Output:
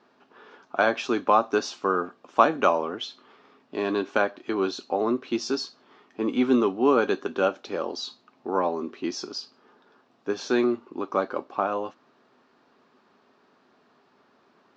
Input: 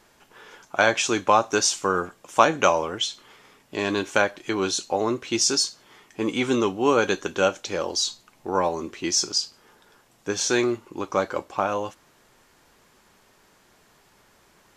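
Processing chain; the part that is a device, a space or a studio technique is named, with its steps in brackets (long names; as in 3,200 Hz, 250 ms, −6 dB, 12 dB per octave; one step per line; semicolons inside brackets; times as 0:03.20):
kitchen radio (loudspeaker in its box 170–4,400 Hz, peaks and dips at 250 Hz +10 dB, 400 Hz +5 dB, 690 Hz +4 dB, 1,200 Hz +5 dB, 2,100 Hz −5 dB, 3,200 Hz −4 dB)
level −4.5 dB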